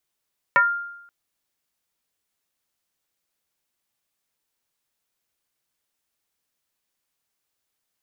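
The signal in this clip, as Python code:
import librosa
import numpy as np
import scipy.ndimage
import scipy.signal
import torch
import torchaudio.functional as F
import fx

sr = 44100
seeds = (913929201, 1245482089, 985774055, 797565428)

y = fx.fm2(sr, length_s=0.53, level_db=-11, carrier_hz=1400.0, ratio=0.3, index=1.7, index_s=0.27, decay_s=0.83, shape='exponential')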